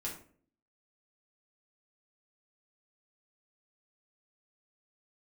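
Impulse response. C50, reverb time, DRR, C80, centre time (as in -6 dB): 7.0 dB, 0.50 s, -4.5 dB, 12.0 dB, 27 ms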